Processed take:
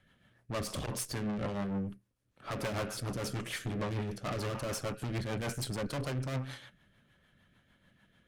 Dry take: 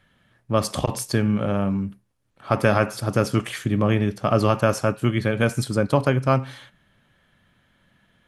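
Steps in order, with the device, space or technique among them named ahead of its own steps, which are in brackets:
overdriven rotary cabinet (tube saturation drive 31 dB, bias 0.6; rotating-speaker cabinet horn 6.7 Hz)

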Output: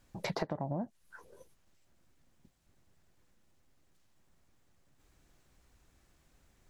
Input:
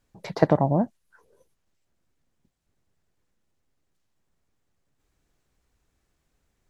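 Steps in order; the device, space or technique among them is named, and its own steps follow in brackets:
notch filter 440 Hz, Q 12
serial compression, peaks first (downward compressor 6 to 1, threshold −29 dBFS, peak gain reduction 15.5 dB; downward compressor 3 to 1, threshold −40 dBFS, peak gain reduction 12 dB)
level +5.5 dB

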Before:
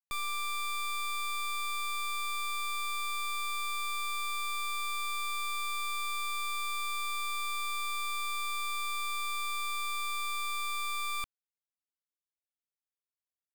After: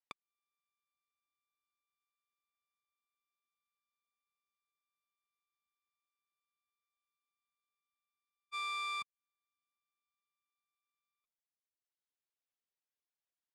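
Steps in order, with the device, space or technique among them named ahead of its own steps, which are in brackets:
0:08.51–0:09.02: high-pass filter 290 Hz 12 dB per octave
reverb reduction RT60 0.76 s
public-address speaker with an overloaded transformer (saturating transformer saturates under 140 Hz; band-pass filter 260–5,200 Hz)
level +1 dB

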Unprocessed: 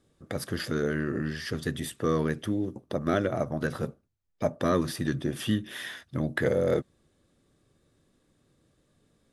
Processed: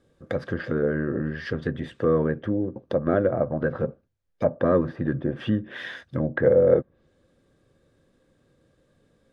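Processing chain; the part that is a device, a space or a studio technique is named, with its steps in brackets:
treble cut that deepens with the level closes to 1,300 Hz, closed at −26.5 dBFS
inside a helmet (high-shelf EQ 5,400 Hz −9 dB; hollow resonant body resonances 520/1,600 Hz, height 9 dB)
level +3 dB

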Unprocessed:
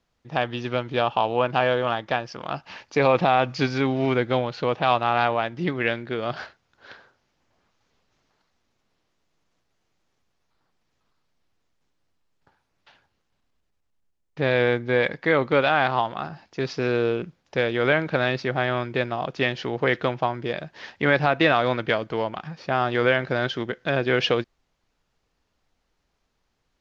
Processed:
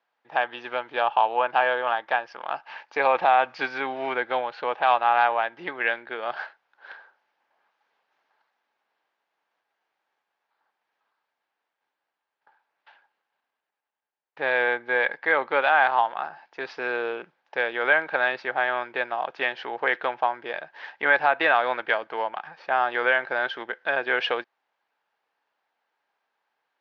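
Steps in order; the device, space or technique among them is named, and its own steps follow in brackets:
tin-can telephone (band-pass filter 630–2,800 Hz; hollow resonant body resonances 850/1,600 Hz, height 7 dB, ringing for 20 ms)

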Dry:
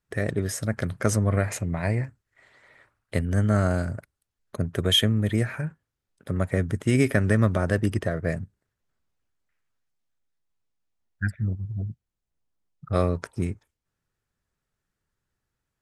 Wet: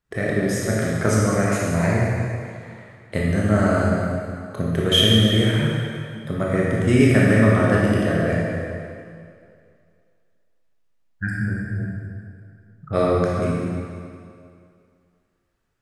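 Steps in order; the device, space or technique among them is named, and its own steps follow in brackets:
parametric band 99 Hz −7.5 dB 0.23 octaves
swimming-pool hall (convolution reverb RT60 2.4 s, pre-delay 18 ms, DRR −5 dB; high-shelf EQ 5,300 Hz −6 dB)
level +2 dB

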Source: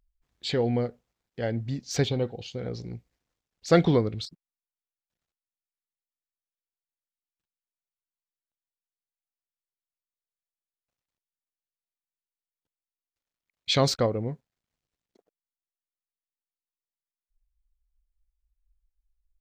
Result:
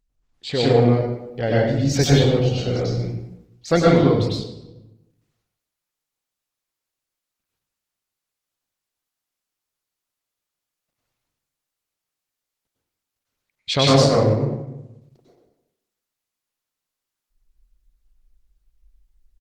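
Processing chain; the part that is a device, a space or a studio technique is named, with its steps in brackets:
speakerphone in a meeting room (convolution reverb RT60 0.85 s, pre-delay 92 ms, DRR −6 dB; far-end echo of a speakerphone 210 ms, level −25 dB; automatic gain control gain up to 8 dB; level −1 dB; Opus 16 kbit/s 48,000 Hz)

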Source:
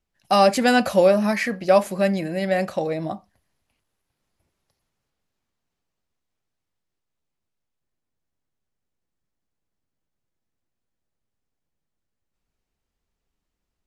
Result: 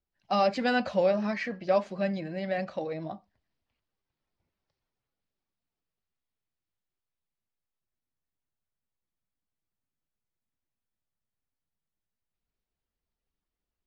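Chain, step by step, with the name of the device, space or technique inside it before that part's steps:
clip after many re-uploads (low-pass filter 5,200 Hz 24 dB per octave; spectral magnitudes quantised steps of 15 dB)
level −8.5 dB

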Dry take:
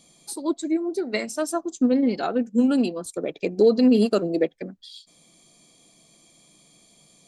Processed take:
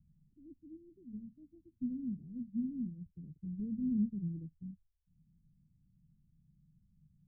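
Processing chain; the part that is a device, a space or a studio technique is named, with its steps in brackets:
guitar amp tone stack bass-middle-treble 10-0-1
harmonic and percussive parts rebalanced harmonic +8 dB
the neighbour's flat through the wall (low-pass filter 170 Hz 24 dB per octave; parametric band 82 Hz +7 dB 0.99 octaves)
level +6 dB

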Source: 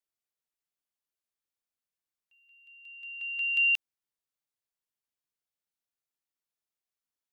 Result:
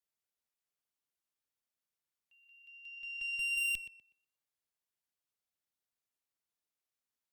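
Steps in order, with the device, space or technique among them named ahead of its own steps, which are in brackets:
rockabilly slapback (tube saturation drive 32 dB, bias 0.4; tape delay 121 ms, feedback 30%, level −9 dB, low-pass 3,100 Hz)

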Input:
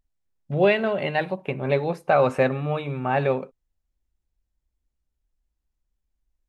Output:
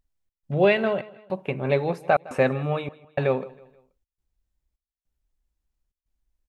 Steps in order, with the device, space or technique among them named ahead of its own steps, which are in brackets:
trance gate with a delay (gate pattern "xx.xxxx..xxxx" 104 BPM −60 dB; repeating echo 160 ms, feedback 41%, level −21 dB)

